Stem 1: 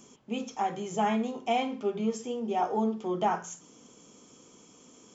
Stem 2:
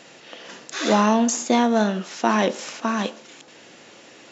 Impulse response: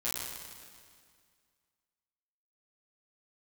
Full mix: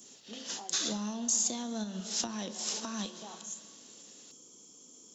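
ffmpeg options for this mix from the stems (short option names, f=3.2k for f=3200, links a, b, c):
-filter_complex "[0:a]equalizer=f=330:t=o:w=2:g=6.5,acompressor=threshold=-35dB:ratio=3,volume=-12dB,asplit=2[a][b];[1:a]agate=range=-33dB:threshold=-35dB:ratio=3:detection=peak,volume=-2.5dB,asplit=2[c][d];[d]volume=-22.5dB[e];[b]apad=whole_len=190203[f];[c][f]sidechaincompress=threshold=-50dB:ratio=4:attack=7.5:release=227[g];[2:a]atrim=start_sample=2205[h];[e][h]afir=irnorm=-1:irlink=0[i];[a][g][i]amix=inputs=3:normalize=0,acrossover=split=160[j][k];[k]acompressor=threshold=-39dB:ratio=10[l];[j][l]amix=inputs=2:normalize=0,aexciter=amount=4.3:drive=7.1:freq=3.3k"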